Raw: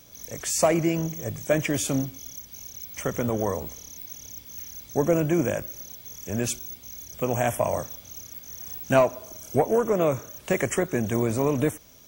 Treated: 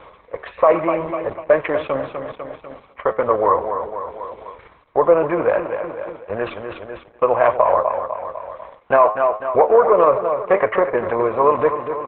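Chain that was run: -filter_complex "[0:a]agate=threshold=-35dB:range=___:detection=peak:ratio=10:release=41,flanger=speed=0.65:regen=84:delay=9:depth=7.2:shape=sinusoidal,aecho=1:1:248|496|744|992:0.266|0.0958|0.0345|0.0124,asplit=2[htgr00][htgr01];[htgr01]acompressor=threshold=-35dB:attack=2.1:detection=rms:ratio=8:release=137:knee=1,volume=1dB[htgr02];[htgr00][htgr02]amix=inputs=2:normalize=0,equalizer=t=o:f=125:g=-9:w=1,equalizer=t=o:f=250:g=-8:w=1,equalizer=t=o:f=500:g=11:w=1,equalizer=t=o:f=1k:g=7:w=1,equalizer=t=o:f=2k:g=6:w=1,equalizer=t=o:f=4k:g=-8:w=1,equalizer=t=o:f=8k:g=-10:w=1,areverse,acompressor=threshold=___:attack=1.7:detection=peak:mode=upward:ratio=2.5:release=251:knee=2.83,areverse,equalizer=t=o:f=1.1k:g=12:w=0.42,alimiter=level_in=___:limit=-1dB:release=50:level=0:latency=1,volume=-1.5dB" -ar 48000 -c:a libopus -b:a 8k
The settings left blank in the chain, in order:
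-15dB, -23dB, 5dB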